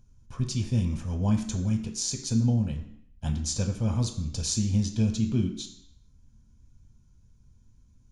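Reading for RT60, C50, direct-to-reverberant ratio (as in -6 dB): 0.70 s, 9.0 dB, 3.0 dB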